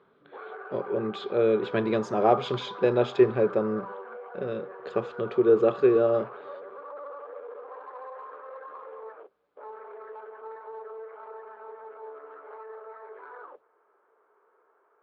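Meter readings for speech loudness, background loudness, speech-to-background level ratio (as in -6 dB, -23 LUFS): -25.5 LUFS, -42.0 LUFS, 16.5 dB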